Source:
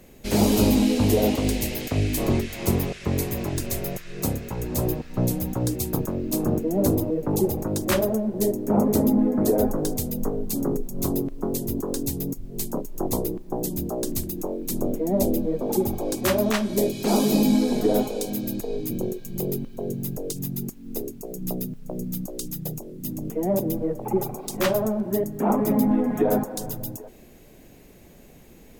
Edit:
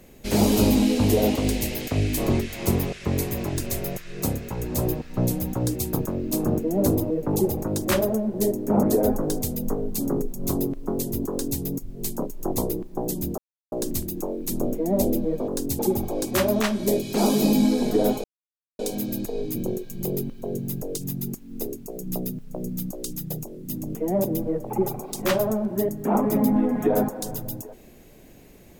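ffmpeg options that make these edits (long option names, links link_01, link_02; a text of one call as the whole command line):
ffmpeg -i in.wav -filter_complex "[0:a]asplit=6[link_01][link_02][link_03][link_04][link_05][link_06];[link_01]atrim=end=8.832[link_07];[link_02]atrim=start=9.378:end=13.93,asetpts=PTS-STARTPTS,afade=type=out:start_time=4.548:duration=0.004:curve=hsin,apad=pad_dur=0.34[link_08];[link_03]atrim=start=13.93:end=15.692,asetpts=PTS-STARTPTS,afade=type=in:duration=0.004:curve=hsin[link_09];[link_04]atrim=start=11.848:end=12.162[link_10];[link_05]atrim=start=15.688:end=18.14,asetpts=PTS-STARTPTS,afade=type=out:start_time=2.448:duration=0.004:curve=hsin,apad=pad_dur=0.55[link_11];[link_06]atrim=start=18.14,asetpts=PTS-STARTPTS,afade=type=in:duration=0.004:curve=hsin[link_12];[link_08][link_09]concat=n=2:v=0:a=1[link_13];[link_07][link_13]acrossfade=duration=0.004:curve1=hsin:curve2=hsin[link_14];[link_14][link_10]acrossfade=duration=0.004:curve1=hsin:curve2=hsin[link_15];[link_11][link_12]concat=n=2:v=0:a=1[link_16];[link_15][link_16]acrossfade=duration=0.004:curve1=hsin:curve2=hsin" out.wav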